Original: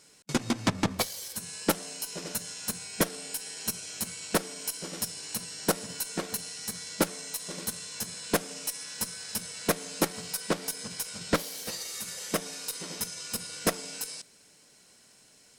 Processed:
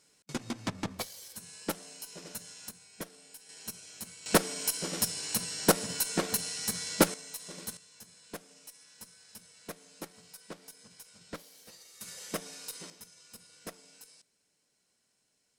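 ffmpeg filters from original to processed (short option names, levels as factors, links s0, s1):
-af "asetnsamples=n=441:p=0,asendcmd='2.69 volume volume -15.5dB;3.49 volume volume -9.5dB;4.26 volume volume 3dB;7.14 volume volume -6.5dB;7.77 volume volume -17dB;12.01 volume volume -6.5dB;12.9 volume volume -17.5dB',volume=0.376"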